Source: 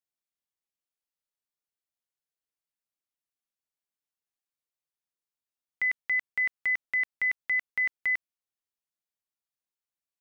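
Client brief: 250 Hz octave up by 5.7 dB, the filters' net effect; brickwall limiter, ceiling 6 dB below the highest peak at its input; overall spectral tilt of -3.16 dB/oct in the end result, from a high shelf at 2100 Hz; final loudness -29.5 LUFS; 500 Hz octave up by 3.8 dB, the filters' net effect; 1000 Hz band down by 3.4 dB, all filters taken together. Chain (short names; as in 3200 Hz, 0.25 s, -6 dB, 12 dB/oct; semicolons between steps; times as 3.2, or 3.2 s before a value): bell 250 Hz +6 dB; bell 500 Hz +5 dB; bell 1000 Hz -8 dB; high shelf 2100 Hz +6 dB; gain +2.5 dB; limiter -24 dBFS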